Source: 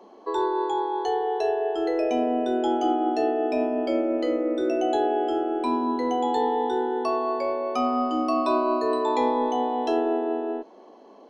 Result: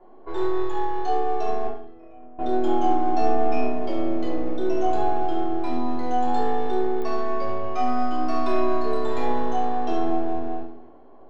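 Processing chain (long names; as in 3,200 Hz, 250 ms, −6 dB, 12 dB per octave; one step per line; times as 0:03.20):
gain on one half-wave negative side −7 dB
0:01.67–0:02.39: noise gate −21 dBFS, range −23 dB
low-pass that shuts in the quiet parts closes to 1,700 Hz, open at −21 dBFS
0:03.12–0:03.61: double-tracking delay 12 ms −4 dB
flutter between parallel walls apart 11.9 metres, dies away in 0.4 s
convolution reverb RT60 0.50 s, pre-delay 3 ms, DRR −3.5 dB
digital clicks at 0:07.02, −16 dBFS
level −6 dB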